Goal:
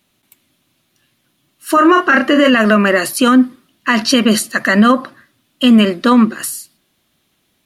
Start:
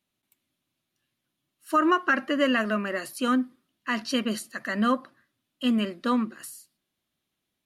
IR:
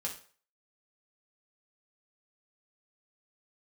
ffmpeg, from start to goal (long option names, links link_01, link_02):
-filter_complex "[0:a]asettb=1/sr,asplit=3[link_01][link_02][link_03];[link_01]atrim=end=1.744[link_04];[link_02]atrim=start=1.74:end=2.5,asetpts=PTS-STARTPTS,afade=type=in:duration=0.004:curve=qsin,afade=type=out:start_time=0.756:duration=0.004:curve=qsin,asplit=2[link_05][link_06];[link_06]adelay=31,volume=-6dB[link_07];[link_05][link_07]amix=inputs=2:normalize=0,atrim=end_sample=33516[link_08];[link_03]atrim=start=2.496[link_09];[link_04][link_08]acrossfade=duration=0.004:curve1=hsin:curve2=qsin[link_10];[link_10][link_09]acrossfade=duration=0.004:curve1=qsin:curve2=hsin,alimiter=level_in=19.5dB:limit=-1dB:release=50:level=0:latency=1,volume=-1dB"